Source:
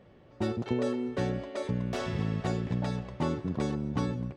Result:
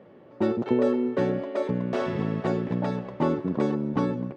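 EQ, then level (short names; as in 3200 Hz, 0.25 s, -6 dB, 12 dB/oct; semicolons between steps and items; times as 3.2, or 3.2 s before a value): HPF 220 Hz 12 dB/oct; LPF 1100 Hz 6 dB/oct; notch 730 Hz, Q 24; +9.0 dB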